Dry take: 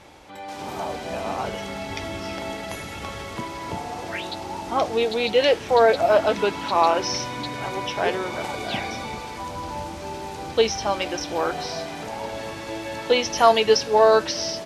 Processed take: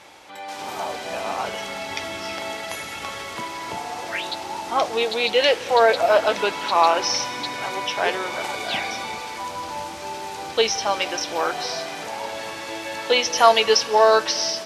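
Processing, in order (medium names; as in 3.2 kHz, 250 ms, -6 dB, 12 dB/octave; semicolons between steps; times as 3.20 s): high-pass 100 Hz 6 dB/octave; bass shelf 460 Hz -11.5 dB; on a send: reverberation RT60 2.5 s, pre-delay 152 ms, DRR 18.5 dB; on the sum: trim +4.5 dB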